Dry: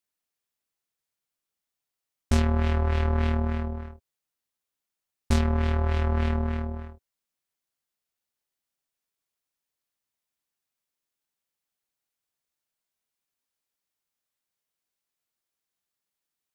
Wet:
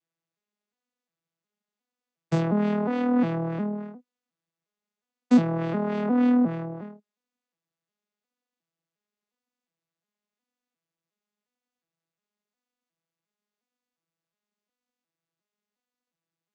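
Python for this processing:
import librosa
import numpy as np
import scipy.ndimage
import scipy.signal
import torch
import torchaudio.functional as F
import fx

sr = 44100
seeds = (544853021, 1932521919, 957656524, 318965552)

y = fx.vocoder_arp(x, sr, chord='major triad', root=52, every_ms=358)
y = y * 10.0 ** (7.0 / 20.0)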